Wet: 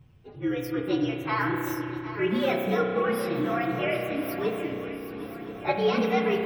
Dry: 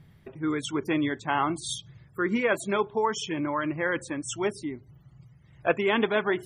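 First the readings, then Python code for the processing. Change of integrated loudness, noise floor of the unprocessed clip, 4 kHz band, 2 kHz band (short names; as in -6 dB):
0.0 dB, -56 dBFS, -2.0 dB, -2.0 dB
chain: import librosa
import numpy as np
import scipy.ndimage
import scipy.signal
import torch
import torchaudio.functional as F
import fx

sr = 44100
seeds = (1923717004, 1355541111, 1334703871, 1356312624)

y = fx.partial_stretch(x, sr, pct=119)
y = fx.peak_eq(y, sr, hz=5900.0, db=-9.0, octaves=1.3)
y = fx.echo_swing(y, sr, ms=1024, ratio=3, feedback_pct=55, wet_db=-13.0)
y = fx.rev_spring(y, sr, rt60_s=2.7, pass_ms=(32,), chirp_ms=75, drr_db=2.0)
y = y * librosa.db_to_amplitude(1.5)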